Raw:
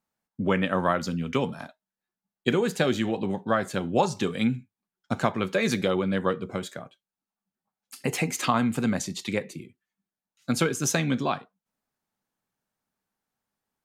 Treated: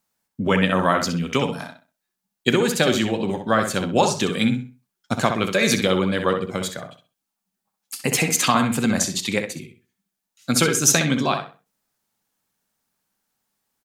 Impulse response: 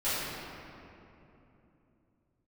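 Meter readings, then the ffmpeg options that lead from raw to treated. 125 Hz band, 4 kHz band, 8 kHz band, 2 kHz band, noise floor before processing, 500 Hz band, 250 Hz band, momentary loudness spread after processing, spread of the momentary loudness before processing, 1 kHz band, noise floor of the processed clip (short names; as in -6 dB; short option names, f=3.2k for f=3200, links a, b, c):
+4.5 dB, +10.0 dB, +12.0 dB, +7.0 dB, under -85 dBFS, +5.0 dB, +4.5 dB, 11 LU, 10 LU, +5.5 dB, -82 dBFS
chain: -filter_complex "[0:a]highshelf=f=2.9k:g=9.5,asplit=2[a][b];[b]adelay=64,lowpass=f=3.8k:p=1,volume=-6dB,asplit=2[c][d];[d]adelay=64,lowpass=f=3.8k:p=1,volume=0.28,asplit=2[e][f];[f]adelay=64,lowpass=f=3.8k:p=1,volume=0.28,asplit=2[g][h];[h]adelay=64,lowpass=f=3.8k:p=1,volume=0.28[i];[c][e][g][i]amix=inputs=4:normalize=0[j];[a][j]amix=inputs=2:normalize=0,volume=3.5dB"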